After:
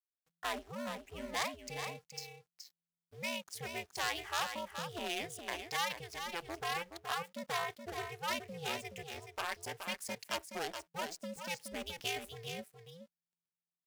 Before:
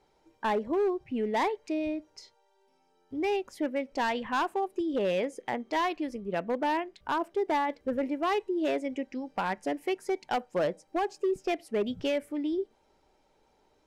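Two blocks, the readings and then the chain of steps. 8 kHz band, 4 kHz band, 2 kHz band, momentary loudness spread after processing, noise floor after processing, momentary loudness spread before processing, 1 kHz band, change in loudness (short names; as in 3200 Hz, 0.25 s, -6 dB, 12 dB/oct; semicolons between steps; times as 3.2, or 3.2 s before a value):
+7.5 dB, +2.0 dB, -3.0 dB, 10 LU, under -85 dBFS, 5 LU, -9.5 dB, -9.0 dB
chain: backlash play -50 dBFS; pre-emphasis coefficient 0.97; ring modulator 170 Hz; echo 0.423 s -7.5 dB; gain +11 dB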